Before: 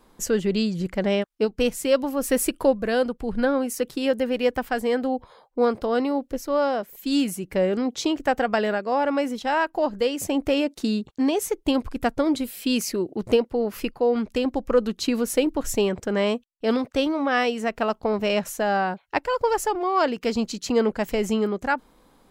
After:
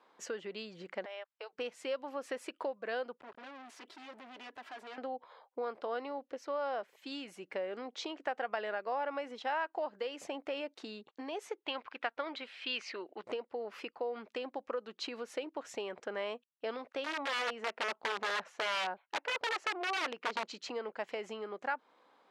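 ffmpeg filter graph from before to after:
-filter_complex "[0:a]asettb=1/sr,asplit=3[a][b][c];[a]atrim=end=1.054[d];[b]atrim=start=1.05:end=1.53,asetpts=PTS-STARTPTS,afade=t=in:d=0.004:c=qsin,afade=t=out:st=0.476:d=0.004:c=qsin,highpass=f=560:w=0.5412,highpass=f=560:w=1.3066,acompressor=threshold=-33dB:ratio=12:attack=3.2:release=140:knee=1:detection=peak[e];[c]atrim=start=1.526[f];[d][e]acrossfade=d=0.004:c1=hsin:c2=qsin[g];[g][f]acrossfade=d=0.004:c1=qsin:c2=hsin,asettb=1/sr,asplit=3[h][i][j];[h]atrim=end=3.204[k];[i]atrim=start=3.2:end=4.98,asetpts=PTS-STARTPTS,afade=t=in:d=0.004:c=qsin,afade=t=out:st=1.776:d=0.004:c=qsin,aecho=1:1:3:1,atrim=end_sample=78498,acompressor=threshold=-29dB:ratio=3:attack=3.2:release=140:knee=1:detection=peak,asoftclip=type=hard:threshold=-37.5dB[l];[j]atrim=start=4.976[m];[k][l]acrossfade=d=0.004:c1=hsin:c2=qsin[n];[n][m]acrossfade=d=0.004:c1=qsin:c2=hsin,asettb=1/sr,asplit=3[o][p][q];[o]atrim=end=11.654[r];[p]atrim=start=11.65:end=13.24,asetpts=PTS-STARTPTS,afade=t=in:d=0.004:c=qsin,afade=t=out:st=1.586:d=0.004:c=qsin,lowpass=3k,tiltshelf=f=920:g=-8.5[s];[q]atrim=start=13.236[t];[r][s]acrossfade=d=0.004:c1=hsin:c2=qsin[u];[u][t]acrossfade=d=0.004:c1=qsin:c2=hsin,asettb=1/sr,asplit=3[v][w][x];[v]atrim=end=17.044[y];[w]atrim=start=17.04:end=20.45,asetpts=PTS-STARTPTS,afade=t=in:d=0.004:c=qsin,afade=t=out:st=3.406:d=0.004:c=qsin,lowpass=f=2.5k:p=1,aeval=exprs='(mod(8.41*val(0)+1,2)-1)/8.41':c=same[z];[x]atrim=start=20.446[aa];[y][z]acrossfade=d=0.004:c1=hsin:c2=qsin[ab];[ab][aa]acrossfade=d=0.004:c1=qsin:c2=hsin,lowpass=3.3k,acompressor=threshold=-26dB:ratio=6,highpass=560,volume=-4dB"

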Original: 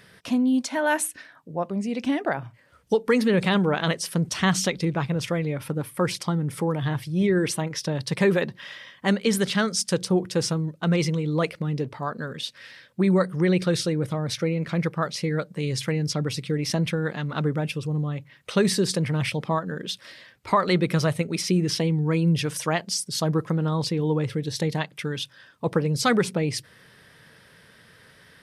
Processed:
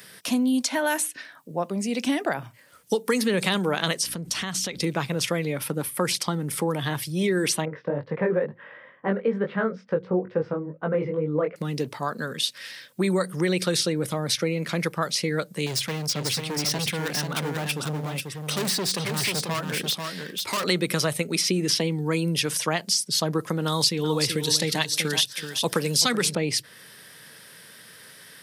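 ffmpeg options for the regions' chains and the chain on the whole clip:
-filter_complex "[0:a]asettb=1/sr,asplit=3[a][b][c];[a]atrim=end=4.034[d];[b]atrim=start=4.03:end=4.83,asetpts=PTS-STARTPTS,afade=t=in:d=0.004:c=qsin,afade=t=out:st=0.796:d=0.004:c=qsin,aeval=exprs='val(0)+0.00891*(sin(2*PI*60*n/s)+sin(2*PI*2*60*n/s)/2+sin(2*PI*3*60*n/s)/3+sin(2*PI*4*60*n/s)/4+sin(2*PI*5*60*n/s)/5)':c=same,acompressor=threshold=-29dB:ratio=10:attack=3.2:release=140:knee=1:detection=peak[e];[c]atrim=start=4.826[f];[d][e]acrossfade=d=0.004:c1=hsin:c2=qsin[g];[g][f]acrossfade=d=0.004:c1=qsin:c2=hsin,asettb=1/sr,asplit=3[h][i][j];[h]atrim=end=7.654[k];[i]atrim=start=7.65:end=11.56,asetpts=PTS-STARTPTS,afade=t=in:d=0.004:c=qsin,afade=t=out:st=3.906:d=0.004:c=qsin,lowpass=f=1.7k:w=0.5412,lowpass=f=1.7k:w=1.3066,equalizer=f=500:t=o:w=0.42:g=9,flanger=delay=19:depth=3.4:speed=2.2[l];[j]atrim=start=11.556[m];[k][l]acrossfade=d=0.004:c1=hsin:c2=qsin[n];[n][m]acrossfade=d=0.004:c1=qsin:c2=hsin,asettb=1/sr,asplit=3[o][p][q];[o]atrim=end=15.664[r];[p]atrim=start=15.66:end=20.64,asetpts=PTS-STARTPTS,afade=t=in:d=0.004:c=qsin,afade=t=out:st=4.976:d=0.004:c=qsin,asoftclip=type=hard:threshold=-27dB,aecho=1:1:490:0.562,atrim=end_sample=219618[s];[q]atrim=start=20.636[t];[r][s]acrossfade=d=0.004:c1=hsin:c2=qsin[u];[u][t]acrossfade=d=0.004:c1=qsin:c2=hsin,asettb=1/sr,asplit=3[v][w][x];[v]atrim=end=23.664[y];[w]atrim=start=23.66:end=26.35,asetpts=PTS-STARTPTS,afade=t=in:d=0.004:c=qsin,afade=t=out:st=2.686:d=0.004:c=qsin,highshelf=f=2.5k:g=12,aecho=1:1:380|760:0.316|0.0538,atrim=end_sample=118629[z];[x]atrim=start=26.346[aa];[y][z]acrossfade=d=0.004:c1=hsin:c2=qsin[ab];[ab][aa]acrossfade=d=0.004:c1=qsin:c2=hsin,highpass=150,aemphasis=mode=production:type=75kf,acrossover=split=230|5100[ac][ad][ae];[ac]acompressor=threshold=-32dB:ratio=4[af];[ad]acompressor=threshold=-23dB:ratio=4[ag];[ae]acompressor=threshold=-33dB:ratio=4[ah];[af][ag][ah]amix=inputs=3:normalize=0,volume=1.5dB"

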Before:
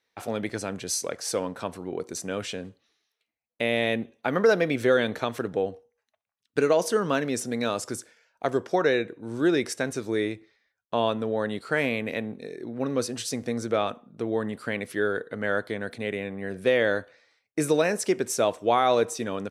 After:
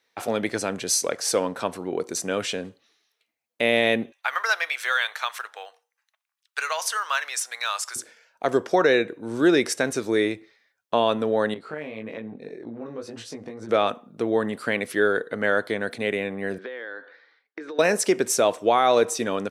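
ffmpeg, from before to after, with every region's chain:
-filter_complex "[0:a]asettb=1/sr,asplit=3[a][b][c];[a]atrim=end=4.124[d];[b]atrim=start=4.12:end=7.96,asetpts=PTS-STARTPTS,afade=t=in:d=0.004:c=qsin,afade=t=out:st=3.836:d=0.004:c=qsin,highpass=f=980:w=0.5412,highpass=f=980:w=1.3066,acrusher=bits=9:mode=log:mix=0:aa=0.000001[e];[c]atrim=start=7.956[f];[d][e]acrossfade=d=0.004:c1=hsin:c2=qsin[g];[g][f]acrossfade=d=0.004:c1=qsin:c2=hsin,asettb=1/sr,asplit=3[h][i][j];[h]atrim=end=11.544[k];[i]atrim=start=11.54:end=13.69,asetpts=PTS-STARTPTS,afade=t=in:d=0.004:c=qsin,afade=t=out:st=2.146:d=0.004:c=qsin,lowpass=f=1.4k:p=1,acompressor=threshold=-32dB:ratio=5:attack=3.2:release=140:knee=1:detection=peak,flanger=delay=17.5:depth=2.5:speed=1.8[l];[j]atrim=start=13.686[m];[k][l]acrossfade=d=0.004:c1=hsin:c2=qsin[n];[n][m]acrossfade=d=0.004:c1=qsin:c2=hsin,asettb=1/sr,asplit=3[o][p][q];[o]atrim=end=16.584[r];[p]atrim=start=16.58:end=17.79,asetpts=PTS-STARTPTS,afade=t=in:d=0.004:c=qsin,afade=t=out:st=1.206:d=0.004:c=qsin,highpass=f=280:w=0.5412,highpass=f=280:w=1.3066,equalizer=f=630:t=q:w=4:g=-9,equalizer=f=1.6k:t=q:w=4:g=6,equalizer=f=2.6k:t=q:w=4:g=-9,lowpass=f=3.8k:w=0.5412,lowpass=f=3.8k:w=1.3066,acompressor=threshold=-37dB:ratio=10:attack=3.2:release=140:knee=1:detection=peak[s];[q]atrim=start=17.786[t];[r][s]acrossfade=d=0.004:c1=hsin:c2=qsin[u];[u][t]acrossfade=d=0.004:c1=qsin:c2=hsin,highpass=f=230:p=1,alimiter=level_in=13.5dB:limit=-1dB:release=50:level=0:latency=1,volume=-7.5dB"

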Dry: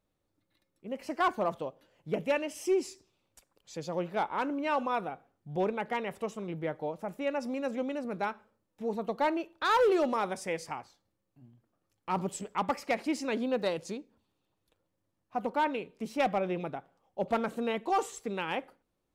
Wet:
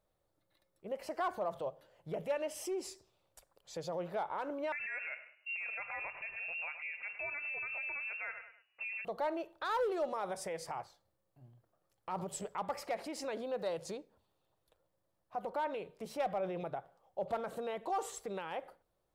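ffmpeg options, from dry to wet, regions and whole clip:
-filter_complex "[0:a]asettb=1/sr,asplit=3[a][b][c];[a]atrim=end=4.724[d];[b]atrim=start=4.72:end=9.05,asetpts=PTS-STARTPTS,afade=t=in:d=0.004:c=qsin,afade=t=out:st=4.326:d=0.004:c=qsin,lowpass=f=2.5k:t=q:w=0.5098,lowpass=f=2.5k:t=q:w=0.6013,lowpass=f=2.5k:t=q:w=0.9,lowpass=f=2.5k:t=q:w=2.563,afreqshift=-2900,acontrast=58,aecho=1:1:103|206|309:0.0944|0.0321|0.0109,atrim=end_sample=190953[e];[c]atrim=start=9.046[f];[d][e]acrossfade=d=0.004:c1=hsin:c2=qsin[g];[g][f]acrossfade=d=0.004:c1=qsin:c2=hsin,bandreject=f=50:t=h:w=6,bandreject=f=100:t=h:w=6,bandreject=f=150:t=h:w=6,alimiter=level_in=6.5dB:limit=-24dB:level=0:latency=1:release=85,volume=-6.5dB,equalizer=f=250:t=o:w=0.67:g=-12,equalizer=f=630:t=o:w=0.67:g=5,equalizer=f=2.5k:t=o:w=0.67:g=-5,equalizer=f=6.3k:t=o:w=0.67:g=-4,volume=1dB"

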